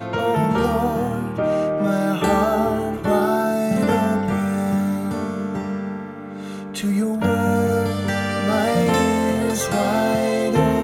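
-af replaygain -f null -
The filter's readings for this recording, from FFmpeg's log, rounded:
track_gain = +2.7 dB
track_peak = 0.372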